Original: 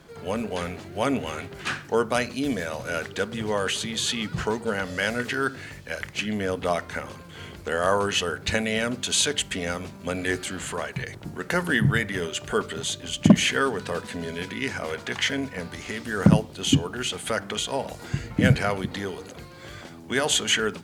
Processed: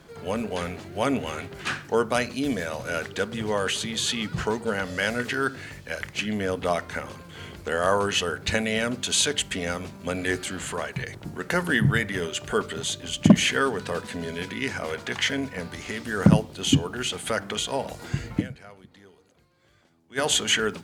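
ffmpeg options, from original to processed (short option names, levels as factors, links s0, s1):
-filter_complex "[0:a]asplit=3[s0][s1][s2];[s0]atrim=end=18.58,asetpts=PTS-STARTPTS,afade=t=out:st=18.4:d=0.18:c=exp:silence=0.0891251[s3];[s1]atrim=start=18.58:end=20.01,asetpts=PTS-STARTPTS,volume=0.0891[s4];[s2]atrim=start=20.01,asetpts=PTS-STARTPTS,afade=t=in:d=0.18:c=exp:silence=0.0891251[s5];[s3][s4][s5]concat=n=3:v=0:a=1"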